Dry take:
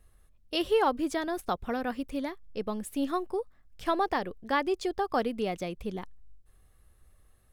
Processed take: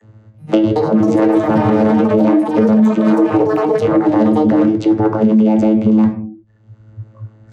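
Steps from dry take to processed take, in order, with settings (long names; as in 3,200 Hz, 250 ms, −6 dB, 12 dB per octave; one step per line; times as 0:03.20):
one scale factor per block 5 bits
high-shelf EQ 2,800 Hz −10.5 dB
compressor whose output falls as the input rises −33 dBFS, ratio −0.5
harmonic generator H 3 −13 dB, 5 −15 dB, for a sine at −19.5 dBFS
channel vocoder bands 16, saw 108 Hz
convolution reverb RT60 0.50 s, pre-delay 3 ms, DRR 5 dB
delay with pitch and tempo change per echo 380 ms, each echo +6 semitones, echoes 3, each echo −6 dB
noise reduction from a noise print of the clip's start 25 dB
boost into a limiter +26 dB
multiband upward and downward compressor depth 70%
level −3.5 dB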